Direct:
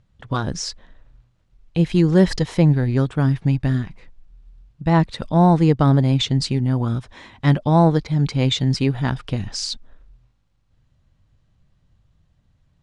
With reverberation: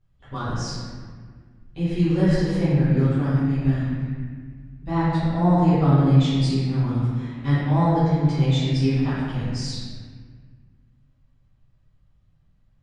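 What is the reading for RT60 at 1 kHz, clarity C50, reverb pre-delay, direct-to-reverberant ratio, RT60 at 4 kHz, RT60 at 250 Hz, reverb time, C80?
1.7 s, -4.0 dB, 7 ms, -16.0 dB, 1.2 s, 2.3 s, 1.7 s, -1.0 dB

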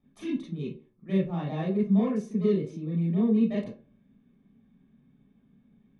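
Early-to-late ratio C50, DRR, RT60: 4.0 dB, -7.0 dB, 0.45 s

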